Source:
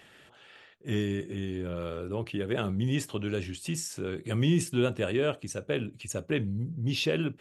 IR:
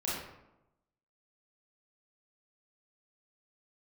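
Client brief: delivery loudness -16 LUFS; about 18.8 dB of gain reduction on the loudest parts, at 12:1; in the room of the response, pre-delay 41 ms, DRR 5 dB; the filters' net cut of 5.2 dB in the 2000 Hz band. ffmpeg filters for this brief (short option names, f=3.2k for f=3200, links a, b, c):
-filter_complex "[0:a]equalizer=f=2k:t=o:g=-7.5,acompressor=threshold=-40dB:ratio=12,asplit=2[a][b];[1:a]atrim=start_sample=2205,adelay=41[c];[b][c]afir=irnorm=-1:irlink=0,volume=-10.5dB[d];[a][d]amix=inputs=2:normalize=0,volume=27dB"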